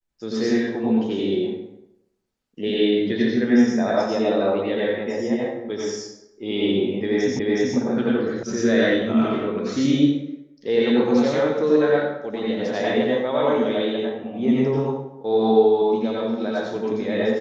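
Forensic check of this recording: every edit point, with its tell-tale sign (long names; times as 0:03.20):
0:07.39: the same again, the last 0.37 s
0:08.43: cut off before it has died away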